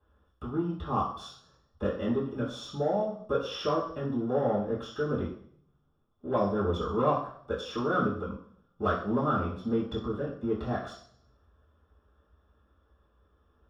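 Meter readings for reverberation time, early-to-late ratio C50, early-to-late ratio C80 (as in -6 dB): 0.60 s, 5.0 dB, 9.0 dB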